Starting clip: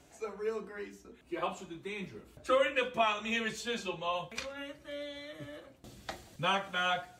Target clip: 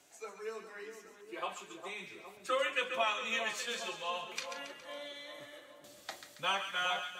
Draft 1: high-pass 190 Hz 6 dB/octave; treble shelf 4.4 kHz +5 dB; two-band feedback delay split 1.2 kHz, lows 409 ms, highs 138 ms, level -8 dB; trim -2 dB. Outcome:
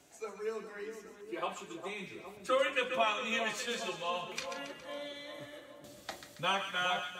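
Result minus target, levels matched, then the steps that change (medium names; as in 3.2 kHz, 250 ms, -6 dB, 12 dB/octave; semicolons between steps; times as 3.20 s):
250 Hz band +6.0 dB
change: high-pass 690 Hz 6 dB/octave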